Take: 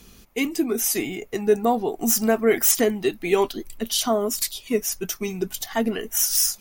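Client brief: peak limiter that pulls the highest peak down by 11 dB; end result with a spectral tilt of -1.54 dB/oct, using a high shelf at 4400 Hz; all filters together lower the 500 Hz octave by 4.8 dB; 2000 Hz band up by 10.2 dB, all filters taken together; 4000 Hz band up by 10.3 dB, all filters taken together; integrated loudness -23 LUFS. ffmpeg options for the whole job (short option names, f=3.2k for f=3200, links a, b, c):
-af "equalizer=f=500:t=o:g=-7,equalizer=f=2k:t=o:g=9,equalizer=f=4k:t=o:g=8.5,highshelf=f=4.4k:g=5,volume=-2dB,alimiter=limit=-11dB:level=0:latency=1"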